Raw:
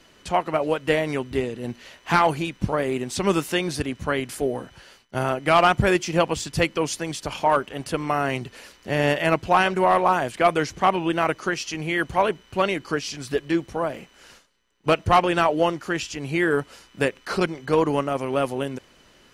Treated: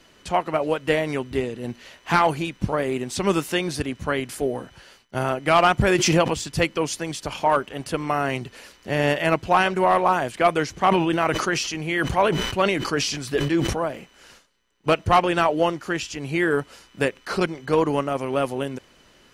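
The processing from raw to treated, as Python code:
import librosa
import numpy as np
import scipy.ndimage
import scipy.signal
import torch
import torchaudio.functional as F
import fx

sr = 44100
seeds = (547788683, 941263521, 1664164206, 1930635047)

y = fx.pre_swell(x, sr, db_per_s=29.0, at=(5.81, 6.51))
y = fx.sustainer(y, sr, db_per_s=42.0, at=(10.89, 13.82), fade=0.02)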